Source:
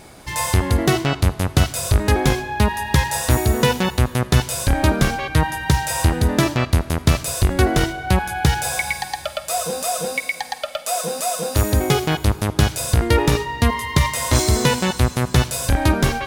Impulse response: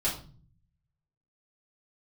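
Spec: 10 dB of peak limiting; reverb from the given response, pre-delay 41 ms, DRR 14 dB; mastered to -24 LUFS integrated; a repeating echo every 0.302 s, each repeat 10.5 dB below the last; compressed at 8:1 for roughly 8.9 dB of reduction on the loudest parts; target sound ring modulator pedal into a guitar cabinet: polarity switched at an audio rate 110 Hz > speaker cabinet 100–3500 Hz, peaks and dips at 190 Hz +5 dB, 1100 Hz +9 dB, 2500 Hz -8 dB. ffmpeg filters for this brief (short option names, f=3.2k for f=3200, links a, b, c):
-filter_complex "[0:a]acompressor=threshold=-20dB:ratio=8,alimiter=limit=-17.5dB:level=0:latency=1,aecho=1:1:302|604|906:0.299|0.0896|0.0269,asplit=2[a][b];[1:a]atrim=start_sample=2205,adelay=41[c];[b][c]afir=irnorm=-1:irlink=0,volume=-21.5dB[d];[a][d]amix=inputs=2:normalize=0,aeval=exprs='val(0)*sgn(sin(2*PI*110*n/s))':c=same,highpass=100,equalizer=f=190:t=q:w=4:g=5,equalizer=f=1.1k:t=q:w=4:g=9,equalizer=f=2.5k:t=q:w=4:g=-8,lowpass=f=3.5k:w=0.5412,lowpass=f=3.5k:w=1.3066,volume=3.5dB"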